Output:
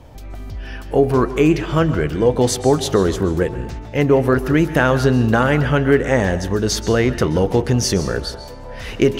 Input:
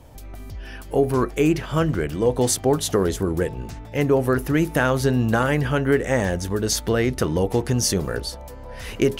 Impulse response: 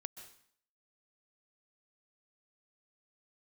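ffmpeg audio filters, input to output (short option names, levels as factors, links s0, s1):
-filter_complex "[0:a]asplit=2[s0][s1];[1:a]atrim=start_sample=2205,lowpass=6700[s2];[s1][s2]afir=irnorm=-1:irlink=0,volume=2.24[s3];[s0][s3]amix=inputs=2:normalize=0,volume=0.708"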